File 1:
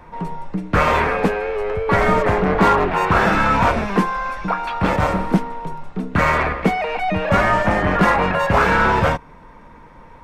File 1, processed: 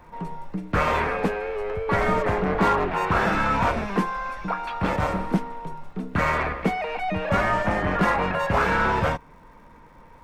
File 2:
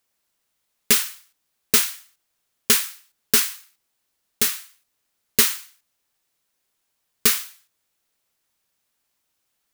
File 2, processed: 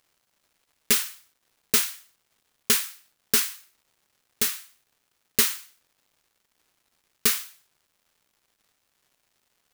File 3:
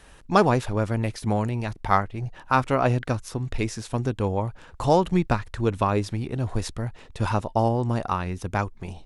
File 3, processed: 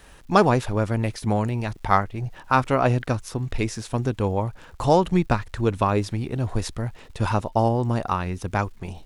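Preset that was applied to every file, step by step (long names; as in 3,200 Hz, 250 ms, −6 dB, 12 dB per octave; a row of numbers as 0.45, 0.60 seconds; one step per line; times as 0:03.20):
surface crackle 380 per second −51 dBFS
loudness normalisation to −24 LKFS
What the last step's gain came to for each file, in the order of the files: −6.0, −4.0, +1.5 decibels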